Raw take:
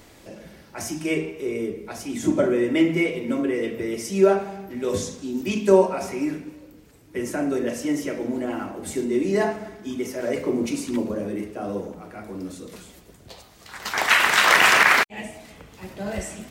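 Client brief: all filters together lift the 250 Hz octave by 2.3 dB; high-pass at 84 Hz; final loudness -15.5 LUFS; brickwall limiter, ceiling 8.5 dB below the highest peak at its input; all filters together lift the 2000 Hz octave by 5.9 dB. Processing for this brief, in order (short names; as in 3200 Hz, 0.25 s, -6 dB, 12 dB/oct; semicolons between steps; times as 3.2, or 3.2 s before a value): HPF 84 Hz; bell 250 Hz +3 dB; bell 2000 Hz +7 dB; gain +5.5 dB; limiter 0 dBFS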